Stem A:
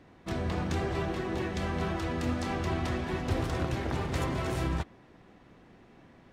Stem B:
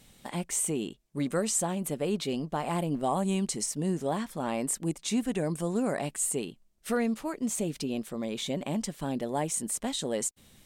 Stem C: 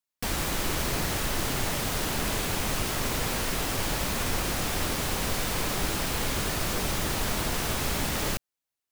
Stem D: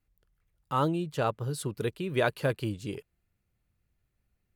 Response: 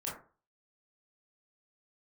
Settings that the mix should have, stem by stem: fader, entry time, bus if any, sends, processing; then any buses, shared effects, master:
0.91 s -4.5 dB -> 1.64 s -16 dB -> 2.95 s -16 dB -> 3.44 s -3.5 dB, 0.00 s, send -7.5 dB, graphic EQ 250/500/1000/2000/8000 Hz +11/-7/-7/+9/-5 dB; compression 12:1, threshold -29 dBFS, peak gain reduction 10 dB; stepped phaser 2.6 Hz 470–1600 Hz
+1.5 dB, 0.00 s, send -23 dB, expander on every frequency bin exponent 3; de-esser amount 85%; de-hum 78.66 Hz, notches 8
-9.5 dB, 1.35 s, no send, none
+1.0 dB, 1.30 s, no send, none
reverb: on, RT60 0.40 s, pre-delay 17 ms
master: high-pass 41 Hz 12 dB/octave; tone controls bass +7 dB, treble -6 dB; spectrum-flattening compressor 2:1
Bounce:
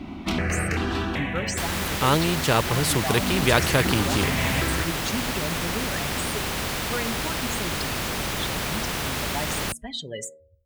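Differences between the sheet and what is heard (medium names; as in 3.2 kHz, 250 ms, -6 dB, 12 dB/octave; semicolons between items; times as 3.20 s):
stem A -4.5 dB -> +5.5 dB; stem D +1.0 dB -> +8.5 dB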